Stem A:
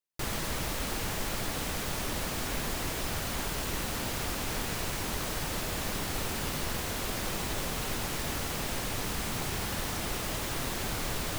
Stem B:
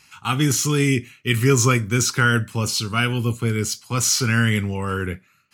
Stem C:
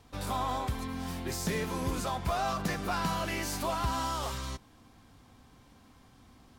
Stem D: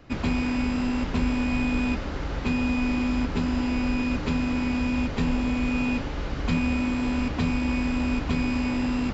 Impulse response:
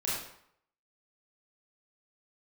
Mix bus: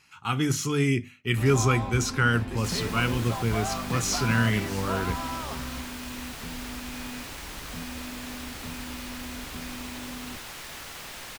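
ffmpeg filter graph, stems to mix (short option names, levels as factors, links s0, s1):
-filter_complex "[0:a]tiltshelf=f=800:g=-7.5,adelay=2450,volume=0.447[s0];[1:a]bandreject=f=50:t=h:w=6,bandreject=f=100:t=h:w=6,bandreject=f=150:t=h:w=6,bandreject=f=200:t=h:w=6,bandreject=f=250:t=h:w=6,volume=0.596[s1];[2:a]adelay=1250,volume=0.891[s2];[3:a]adelay=1250,volume=0.188[s3];[s0][s1][s2][s3]amix=inputs=4:normalize=0,highshelf=f=4400:g=-7.5"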